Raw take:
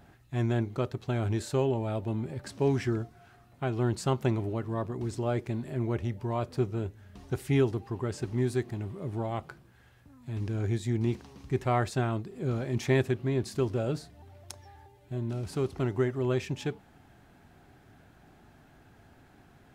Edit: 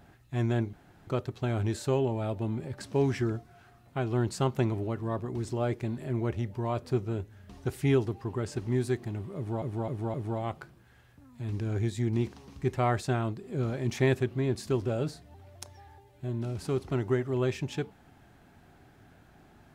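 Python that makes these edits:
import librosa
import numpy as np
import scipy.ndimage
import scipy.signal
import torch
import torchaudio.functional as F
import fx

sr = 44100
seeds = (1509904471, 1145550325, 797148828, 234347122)

y = fx.edit(x, sr, fx.insert_room_tone(at_s=0.73, length_s=0.34),
    fx.repeat(start_s=9.02, length_s=0.26, count=4), tone=tone)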